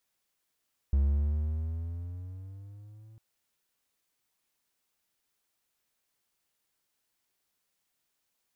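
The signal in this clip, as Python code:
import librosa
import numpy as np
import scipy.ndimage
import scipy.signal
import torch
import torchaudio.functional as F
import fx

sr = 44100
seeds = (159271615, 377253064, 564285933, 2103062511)

y = fx.riser_tone(sr, length_s=2.25, level_db=-19, wave='triangle', hz=68.3, rise_st=8.5, swell_db=-29)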